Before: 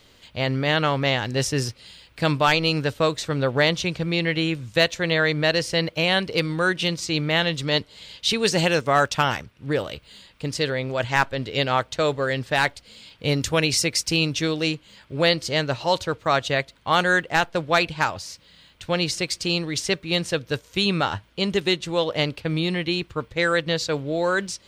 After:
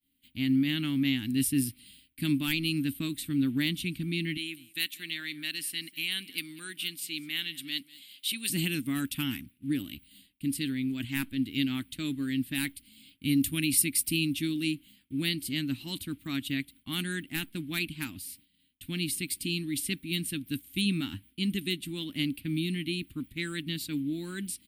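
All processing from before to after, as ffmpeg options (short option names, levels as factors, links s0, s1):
-filter_complex "[0:a]asettb=1/sr,asplit=3[s0][s1][s2];[s0]atrim=end=4.374[s3];[s1]atrim=start=4.37:end=8.5,asetpts=PTS-STARTPTS,afade=t=in:d=0.004:c=qsin,afade=t=out:st=4.126:d=0.004:c=qsin,highpass=f=1200:p=1,aecho=1:1:194:0.0891,atrim=end_sample=182133[s4];[s2]atrim=start=8.496[s5];[s3][s4]acrossfade=d=0.004:c1=hsin:c2=qsin[s6];[s6][s5]acrossfade=d=0.004:c1=qsin:c2=hsin,highshelf=f=11000:g=11.5,agate=range=0.0224:threshold=0.00891:ratio=3:detection=peak,firequalizer=gain_entry='entry(150,0);entry(270,15);entry(480,-28);entry(2200,0);entry(3100,2);entry(6100,-12);entry(9700,14)':delay=0.05:min_phase=1,volume=0.355"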